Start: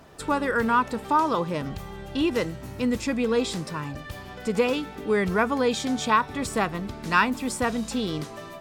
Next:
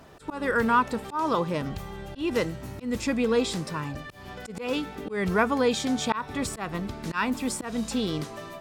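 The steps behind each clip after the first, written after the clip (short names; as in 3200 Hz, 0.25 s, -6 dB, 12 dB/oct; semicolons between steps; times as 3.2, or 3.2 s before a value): auto swell 0.178 s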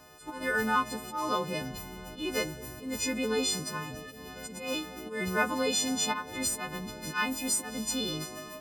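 frequency quantiser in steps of 3 st; dark delay 0.221 s, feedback 84%, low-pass 770 Hz, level -17 dB; gain -6 dB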